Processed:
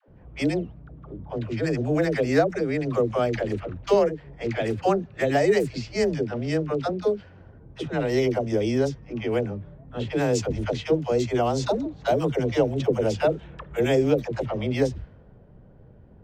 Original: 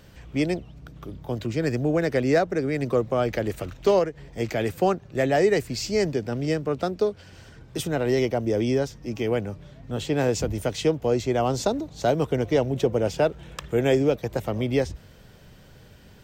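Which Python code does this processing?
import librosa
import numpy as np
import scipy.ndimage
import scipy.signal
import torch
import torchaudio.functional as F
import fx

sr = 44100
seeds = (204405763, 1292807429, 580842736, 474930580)

y = fx.env_lowpass(x, sr, base_hz=650.0, full_db=-18.5)
y = fx.dispersion(y, sr, late='lows', ms=84.0, hz=460.0)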